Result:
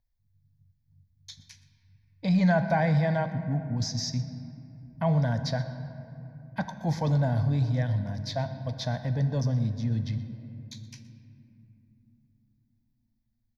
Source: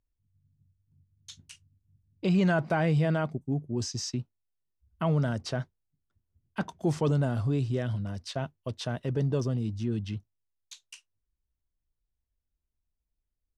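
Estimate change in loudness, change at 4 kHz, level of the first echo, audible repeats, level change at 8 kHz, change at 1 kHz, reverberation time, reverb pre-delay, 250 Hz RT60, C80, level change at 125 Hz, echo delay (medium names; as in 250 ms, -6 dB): +2.0 dB, +2.5 dB, -18.5 dB, 1, -0.5 dB, +3.5 dB, 2.9 s, 4 ms, 4.6 s, 10.5 dB, +3.0 dB, 123 ms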